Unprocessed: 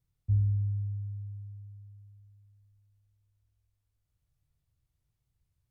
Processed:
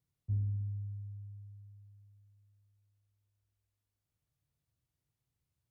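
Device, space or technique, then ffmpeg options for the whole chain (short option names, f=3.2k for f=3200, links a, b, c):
filter by subtraction: -filter_complex "[0:a]asplit=2[a][b];[b]lowpass=240,volume=-1[c];[a][c]amix=inputs=2:normalize=0,volume=-3dB"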